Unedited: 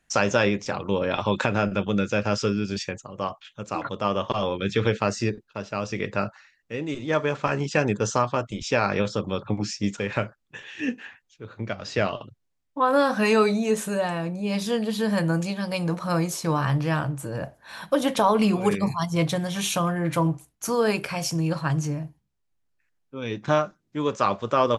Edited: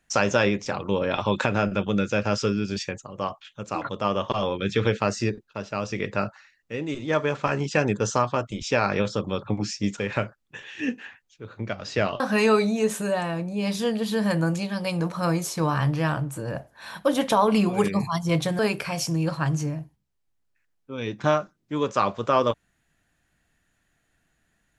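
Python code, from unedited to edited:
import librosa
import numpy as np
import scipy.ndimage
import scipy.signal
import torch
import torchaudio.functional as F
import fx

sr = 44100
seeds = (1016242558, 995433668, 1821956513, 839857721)

y = fx.edit(x, sr, fx.cut(start_s=12.2, length_s=0.87),
    fx.cut(start_s=19.46, length_s=1.37), tone=tone)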